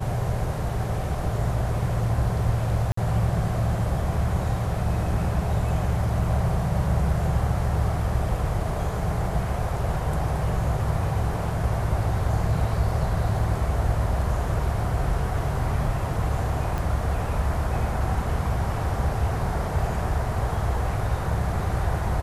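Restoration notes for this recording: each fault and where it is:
2.92–2.97 s: dropout 54 ms
16.78 s: pop

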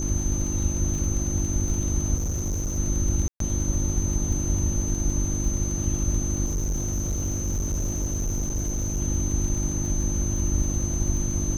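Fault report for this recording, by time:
crackle 33 per s -30 dBFS
hum 50 Hz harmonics 7 -29 dBFS
whine 6.2 kHz -31 dBFS
2.15–2.79 s: clipped -23.5 dBFS
3.28–3.40 s: dropout 123 ms
6.46–9.01 s: clipped -22.5 dBFS

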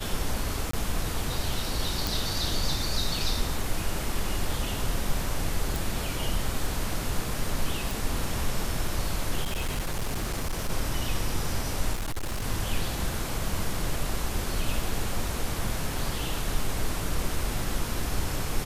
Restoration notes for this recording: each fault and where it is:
0.71–0.73 s: dropout 24 ms
2.07 s: pop
5.76 s: pop
7.91 s: pop
9.43–10.70 s: clipped -24.5 dBFS
11.93–12.46 s: clipped -27 dBFS

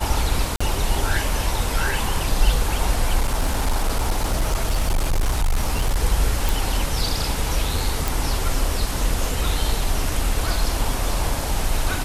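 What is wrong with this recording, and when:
0.56–0.60 s: dropout 45 ms
3.20–6.00 s: clipped -15.5 dBFS
6.49 s: pop
8.08 s: pop

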